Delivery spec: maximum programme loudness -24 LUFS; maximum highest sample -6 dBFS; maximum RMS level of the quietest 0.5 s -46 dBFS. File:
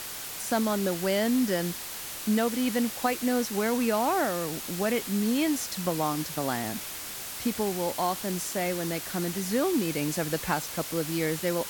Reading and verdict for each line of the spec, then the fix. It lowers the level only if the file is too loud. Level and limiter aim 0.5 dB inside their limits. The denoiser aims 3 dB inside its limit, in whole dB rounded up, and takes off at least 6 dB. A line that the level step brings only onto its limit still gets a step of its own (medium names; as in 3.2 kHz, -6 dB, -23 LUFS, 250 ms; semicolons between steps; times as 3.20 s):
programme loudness -28.5 LUFS: pass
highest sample -12.0 dBFS: pass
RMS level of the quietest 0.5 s -38 dBFS: fail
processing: noise reduction 11 dB, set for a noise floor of -38 dBFS